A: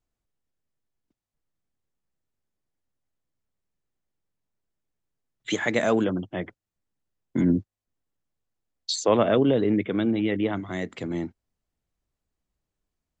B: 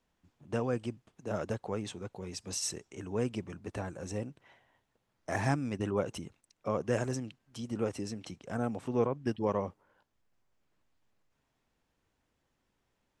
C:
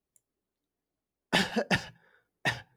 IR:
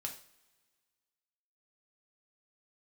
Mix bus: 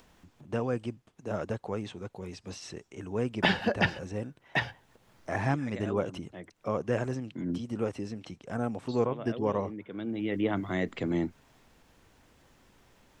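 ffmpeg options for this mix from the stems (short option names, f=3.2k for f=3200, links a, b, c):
-filter_complex "[0:a]volume=0.5dB[a];[1:a]acompressor=mode=upward:threshold=-48dB:ratio=2.5,volume=1.5dB,asplit=2[b][c];[2:a]adelay=2100,volume=1.5dB[d];[c]apad=whole_len=582121[e];[a][e]sidechaincompress=threshold=-51dB:ratio=4:attack=30:release=592[f];[f][b][d]amix=inputs=3:normalize=0,acrossover=split=4200[g][h];[h]acompressor=threshold=-58dB:ratio=4:attack=1:release=60[i];[g][i]amix=inputs=2:normalize=0"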